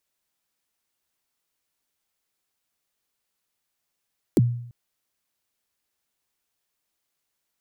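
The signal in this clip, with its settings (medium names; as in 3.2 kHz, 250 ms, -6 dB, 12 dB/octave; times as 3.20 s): kick drum length 0.34 s, from 430 Hz, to 120 Hz, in 30 ms, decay 0.67 s, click on, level -11.5 dB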